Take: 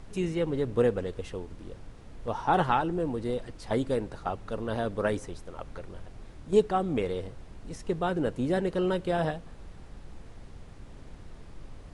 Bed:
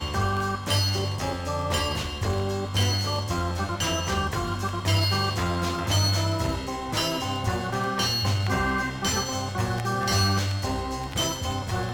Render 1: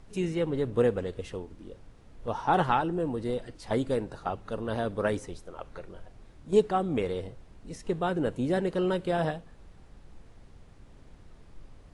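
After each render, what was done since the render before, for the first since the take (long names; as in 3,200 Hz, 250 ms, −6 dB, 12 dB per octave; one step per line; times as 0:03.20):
noise reduction from a noise print 6 dB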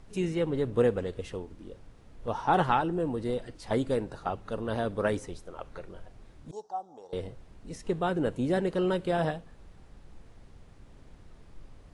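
0:06.51–0:07.13: pair of resonant band-passes 2,200 Hz, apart 2.8 octaves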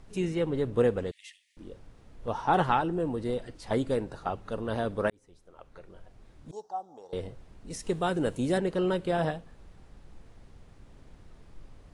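0:01.11–0:01.57: Chebyshev high-pass filter 1,800 Hz, order 8
0:05.10–0:06.63: fade in linear
0:07.70–0:08.58: high-shelf EQ 4,400 Hz +11 dB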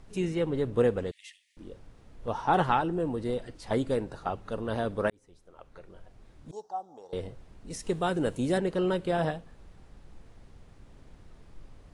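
no processing that can be heard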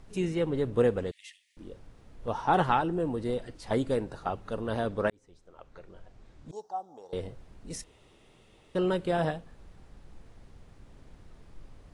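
0:04.87–0:06.55: low-pass filter 8,600 Hz 24 dB per octave
0:07.84–0:08.75: fill with room tone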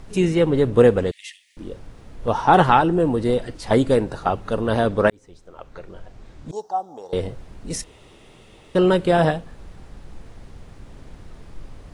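level +11 dB
brickwall limiter −3 dBFS, peak gain reduction 2 dB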